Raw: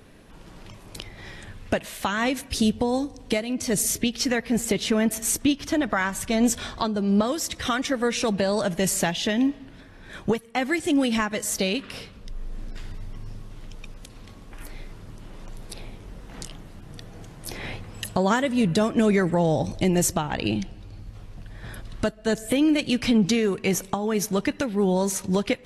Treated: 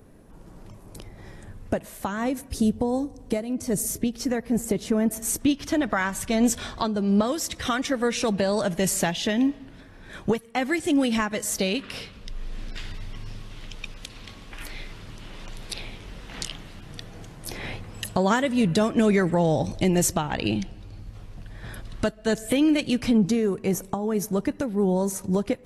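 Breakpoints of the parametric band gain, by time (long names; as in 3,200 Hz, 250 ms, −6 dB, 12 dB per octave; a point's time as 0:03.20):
parametric band 3,100 Hz 2.2 octaves
0:05.03 −13 dB
0:05.60 −1.5 dB
0:11.67 −1.5 dB
0:12.48 +10 dB
0:16.66 +10 dB
0:17.45 0 dB
0:22.72 0 dB
0:23.31 −11.5 dB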